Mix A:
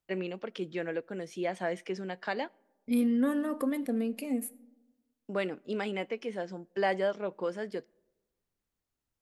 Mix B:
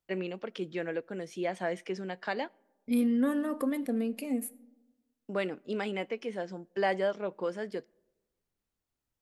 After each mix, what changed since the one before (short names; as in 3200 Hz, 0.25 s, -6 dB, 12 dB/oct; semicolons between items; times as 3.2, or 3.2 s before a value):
none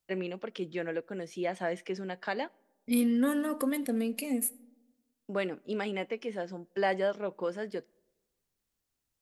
second voice: add high shelf 2600 Hz +9.5 dB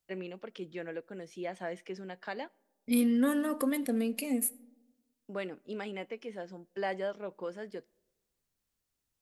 first voice -5.5 dB